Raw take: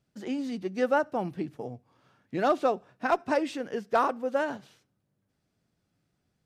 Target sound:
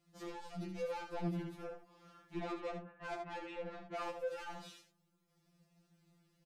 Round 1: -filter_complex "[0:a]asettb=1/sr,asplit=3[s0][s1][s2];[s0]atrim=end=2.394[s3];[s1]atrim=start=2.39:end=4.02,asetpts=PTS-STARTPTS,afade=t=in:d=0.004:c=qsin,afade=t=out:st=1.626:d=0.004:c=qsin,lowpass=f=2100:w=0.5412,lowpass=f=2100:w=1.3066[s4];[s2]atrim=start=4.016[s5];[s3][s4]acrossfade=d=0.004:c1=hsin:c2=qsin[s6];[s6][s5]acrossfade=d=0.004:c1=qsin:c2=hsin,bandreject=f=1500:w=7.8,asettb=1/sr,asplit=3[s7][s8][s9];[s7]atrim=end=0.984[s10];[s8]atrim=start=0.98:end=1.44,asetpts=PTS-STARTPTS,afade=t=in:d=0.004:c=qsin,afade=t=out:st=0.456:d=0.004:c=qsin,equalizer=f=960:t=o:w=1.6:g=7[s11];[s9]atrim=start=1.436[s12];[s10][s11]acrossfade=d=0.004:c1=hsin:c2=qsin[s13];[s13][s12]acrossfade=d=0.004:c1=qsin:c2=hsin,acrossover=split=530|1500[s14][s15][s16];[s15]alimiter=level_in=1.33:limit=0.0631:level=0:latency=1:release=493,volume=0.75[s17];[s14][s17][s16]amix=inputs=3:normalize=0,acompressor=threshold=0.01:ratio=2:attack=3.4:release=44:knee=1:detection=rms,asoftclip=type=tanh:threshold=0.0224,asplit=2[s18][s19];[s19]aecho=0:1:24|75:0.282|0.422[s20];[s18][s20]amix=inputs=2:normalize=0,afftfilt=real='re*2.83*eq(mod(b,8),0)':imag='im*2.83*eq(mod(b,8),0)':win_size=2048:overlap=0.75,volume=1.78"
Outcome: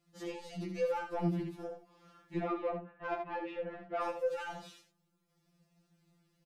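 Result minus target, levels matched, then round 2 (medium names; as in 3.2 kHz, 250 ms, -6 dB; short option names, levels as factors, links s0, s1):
saturation: distortion -9 dB
-filter_complex "[0:a]asettb=1/sr,asplit=3[s0][s1][s2];[s0]atrim=end=2.394[s3];[s1]atrim=start=2.39:end=4.02,asetpts=PTS-STARTPTS,afade=t=in:d=0.004:c=qsin,afade=t=out:st=1.626:d=0.004:c=qsin,lowpass=f=2100:w=0.5412,lowpass=f=2100:w=1.3066[s4];[s2]atrim=start=4.016[s5];[s3][s4]acrossfade=d=0.004:c1=hsin:c2=qsin[s6];[s6][s5]acrossfade=d=0.004:c1=qsin:c2=hsin,bandreject=f=1500:w=7.8,asettb=1/sr,asplit=3[s7][s8][s9];[s7]atrim=end=0.984[s10];[s8]atrim=start=0.98:end=1.44,asetpts=PTS-STARTPTS,afade=t=in:d=0.004:c=qsin,afade=t=out:st=0.456:d=0.004:c=qsin,equalizer=f=960:t=o:w=1.6:g=7[s11];[s9]atrim=start=1.436[s12];[s10][s11]acrossfade=d=0.004:c1=hsin:c2=qsin[s13];[s13][s12]acrossfade=d=0.004:c1=qsin:c2=hsin,acrossover=split=530|1500[s14][s15][s16];[s15]alimiter=level_in=1.33:limit=0.0631:level=0:latency=1:release=493,volume=0.75[s17];[s14][s17][s16]amix=inputs=3:normalize=0,acompressor=threshold=0.01:ratio=2:attack=3.4:release=44:knee=1:detection=rms,asoftclip=type=tanh:threshold=0.00708,asplit=2[s18][s19];[s19]aecho=0:1:24|75:0.282|0.422[s20];[s18][s20]amix=inputs=2:normalize=0,afftfilt=real='re*2.83*eq(mod(b,8),0)':imag='im*2.83*eq(mod(b,8),0)':win_size=2048:overlap=0.75,volume=1.78"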